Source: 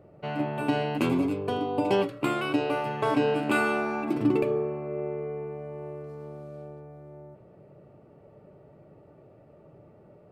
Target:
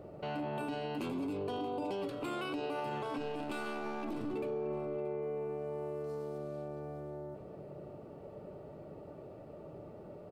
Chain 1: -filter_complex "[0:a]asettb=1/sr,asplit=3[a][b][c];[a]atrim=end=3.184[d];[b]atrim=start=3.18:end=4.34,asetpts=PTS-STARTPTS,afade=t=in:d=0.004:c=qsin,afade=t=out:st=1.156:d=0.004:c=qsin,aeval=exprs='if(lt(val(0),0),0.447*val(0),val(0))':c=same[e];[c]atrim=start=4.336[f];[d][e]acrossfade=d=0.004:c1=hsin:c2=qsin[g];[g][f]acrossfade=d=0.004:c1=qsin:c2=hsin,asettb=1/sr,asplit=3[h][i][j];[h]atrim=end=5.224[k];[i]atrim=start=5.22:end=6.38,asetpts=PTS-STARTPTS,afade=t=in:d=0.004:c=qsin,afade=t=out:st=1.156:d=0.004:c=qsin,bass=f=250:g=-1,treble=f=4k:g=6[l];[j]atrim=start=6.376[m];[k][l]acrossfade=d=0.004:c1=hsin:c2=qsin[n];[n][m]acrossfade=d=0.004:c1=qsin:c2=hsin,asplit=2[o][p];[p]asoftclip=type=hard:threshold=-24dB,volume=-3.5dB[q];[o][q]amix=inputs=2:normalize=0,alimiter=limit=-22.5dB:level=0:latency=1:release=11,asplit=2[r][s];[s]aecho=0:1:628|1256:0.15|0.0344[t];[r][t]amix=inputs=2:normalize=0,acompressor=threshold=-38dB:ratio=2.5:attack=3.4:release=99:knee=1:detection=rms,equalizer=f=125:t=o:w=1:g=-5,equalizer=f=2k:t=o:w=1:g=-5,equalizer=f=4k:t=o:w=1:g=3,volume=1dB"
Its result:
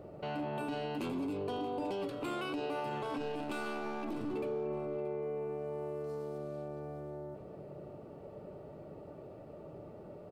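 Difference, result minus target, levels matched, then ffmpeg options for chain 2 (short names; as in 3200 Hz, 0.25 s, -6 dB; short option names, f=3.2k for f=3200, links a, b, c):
hard clip: distortion +10 dB
-filter_complex "[0:a]asettb=1/sr,asplit=3[a][b][c];[a]atrim=end=3.184[d];[b]atrim=start=3.18:end=4.34,asetpts=PTS-STARTPTS,afade=t=in:d=0.004:c=qsin,afade=t=out:st=1.156:d=0.004:c=qsin,aeval=exprs='if(lt(val(0),0),0.447*val(0),val(0))':c=same[e];[c]atrim=start=4.336[f];[d][e]acrossfade=d=0.004:c1=hsin:c2=qsin[g];[g][f]acrossfade=d=0.004:c1=qsin:c2=hsin,asettb=1/sr,asplit=3[h][i][j];[h]atrim=end=5.224[k];[i]atrim=start=5.22:end=6.38,asetpts=PTS-STARTPTS,afade=t=in:d=0.004:c=qsin,afade=t=out:st=1.156:d=0.004:c=qsin,bass=f=250:g=-1,treble=f=4k:g=6[l];[j]atrim=start=6.376[m];[k][l]acrossfade=d=0.004:c1=hsin:c2=qsin[n];[n][m]acrossfade=d=0.004:c1=qsin:c2=hsin,asplit=2[o][p];[p]asoftclip=type=hard:threshold=-18dB,volume=-3.5dB[q];[o][q]amix=inputs=2:normalize=0,alimiter=limit=-22.5dB:level=0:latency=1:release=11,asplit=2[r][s];[s]aecho=0:1:628|1256:0.15|0.0344[t];[r][t]amix=inputs=2:normalize=0,acompressor=threshold=-38dB:ratio=2.5:attack=3.4:release=99:knee=1:detection=rms,equalizer=f=125:t=o:w=1:g=-5,equalizer=f=2k:t=o:w=1:g=-5,equalizer=f=4k:t=o:w=1:g=3,volume=1dB"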